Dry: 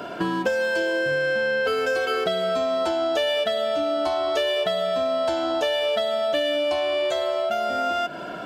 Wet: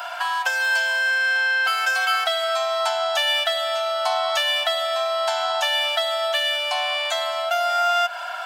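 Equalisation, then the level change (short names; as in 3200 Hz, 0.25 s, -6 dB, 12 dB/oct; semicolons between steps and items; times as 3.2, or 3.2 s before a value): elliptic high-pass 740 Hz, stop band 50 dB; high shelf 6700 Hz +6.5 dB; +6.5 dB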